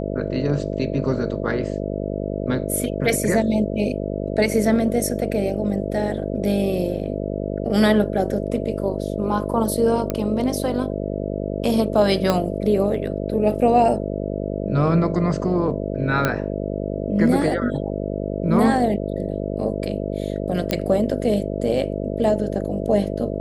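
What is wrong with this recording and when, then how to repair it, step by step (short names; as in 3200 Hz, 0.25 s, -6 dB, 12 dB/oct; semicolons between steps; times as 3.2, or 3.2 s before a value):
buzz 50 Hz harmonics 13 -26 dBFS
10.1 pop -10 dBFS
12.3 pop -6 dBFS
16.25 pop -6 dBFS
20.71 pop -7 dBFS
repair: de-click; de-hum 50 Hz, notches 13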